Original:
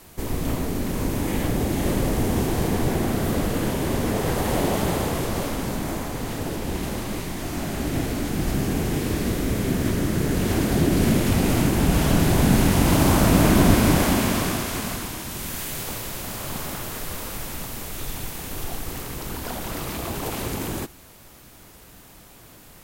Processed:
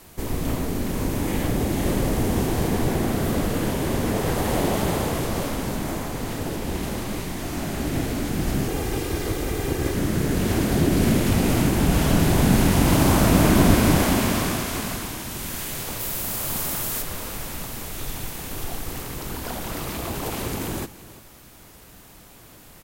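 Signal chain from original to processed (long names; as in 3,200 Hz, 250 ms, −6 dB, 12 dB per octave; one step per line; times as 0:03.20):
0:08.68–0:09.95: lower of the sound and its delayed copy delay 2.5 ms
0:15.99–0:17.01: high-shelf EQ 9,600 Hz → 4,700 Hz +9.5 dB
single-tap delay 340 ms −17.5 dB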